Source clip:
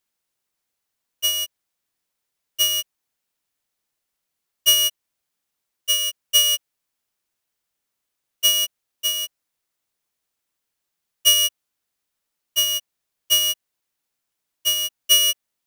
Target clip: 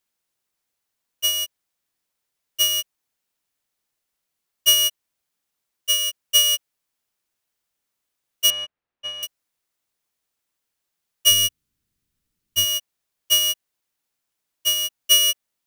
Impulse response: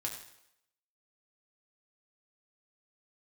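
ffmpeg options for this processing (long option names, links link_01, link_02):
-filter_complex "[0:a]asettb=1/sr,asplit=3[link_01][link_02][link_03];[link_01]atrim=end=8.504[link_04];[link_02]atrim=start=8.5:end=9.23,asetpts=PTS-STARTPTS,afade=type=in:duration=0.004:curve=qsin,afade=type=out:start_time=0.726:duration=0.004:curve=qsin,lowpass=2100[link_05];[link_03]atrim=start=9.226[link_06];[link_04][link_05]acrossfade=duration=0.004:curve1=hsin:curve2=qsin[link_07];[link_07][link_06]acrossfade=duration=0.004:curve1=qsin:curve2=hsin,asplit=3[link_08][link_09][link_10];[link_08]afade=type=out:start_time=11.3:duration=0.02[link_11];[link_09]asubboost=boost=10:cutoff=210,afade=type=in:start_time=11.3:duration=0.02,afade=type=out:start_time=12.64:duration=0.02[link_12];[link_10]afade=type=in:start_time=12.64:duration=0.02[link_13];[link_11][link_12][link_13]amix=inputs=3:normalize=0"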